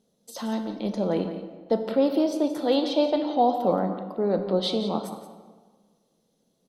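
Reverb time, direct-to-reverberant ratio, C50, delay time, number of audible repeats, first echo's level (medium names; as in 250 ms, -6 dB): 1.5 s, 6.0 dB, 7.0 dB, 174 ms, 1, -12.0 dB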